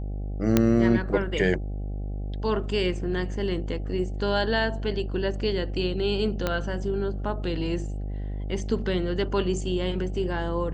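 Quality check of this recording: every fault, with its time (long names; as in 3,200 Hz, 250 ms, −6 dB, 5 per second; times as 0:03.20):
mains buzz 50 Hz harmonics 16 −31 dBFS
0:00.57: click −5 dBFS
0:06.47: click −11 dBFS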